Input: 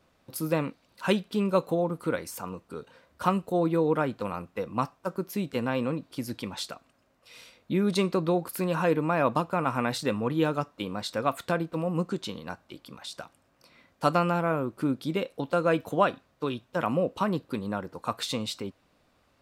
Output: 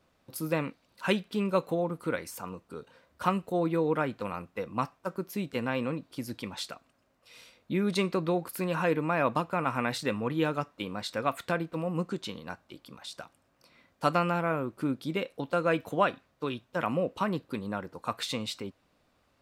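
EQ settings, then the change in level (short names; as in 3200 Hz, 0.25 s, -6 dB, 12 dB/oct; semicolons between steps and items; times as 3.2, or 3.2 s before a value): dynamic EQ 2100 Hz, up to +5 dB, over -46 dBFS, Q 1.4; -3.0 dB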